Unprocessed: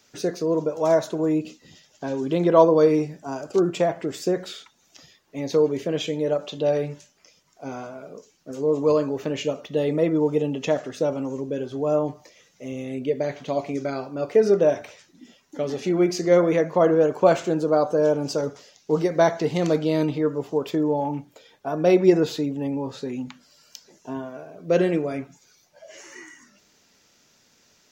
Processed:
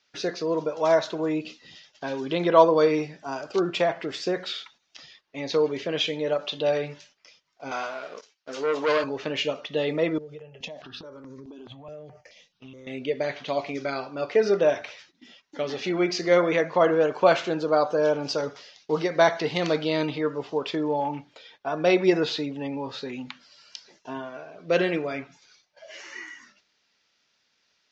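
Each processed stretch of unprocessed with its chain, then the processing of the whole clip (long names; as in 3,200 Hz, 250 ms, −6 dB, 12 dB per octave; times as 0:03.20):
0:07.71–0:09.04: low-shelf EQ 350 Hz −11.5 dB + leveller curve on the samples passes 2 + high-pass filter 210 Hz 6 dB per octave
0:10.18–0:12.87: low-shelf EQ 240 Hz +8 dB + downward compressor 16 to 1, threshold −31 dBFS + step-sequenced phaser 4.7 Hz 260–2,900 Hz
whole clip: tilt shelving filter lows −7 dB, about 770 Hz; noise gate −52 dBFS, range −12 dB; low-pass filter 4,800 Hz 24 dB per octave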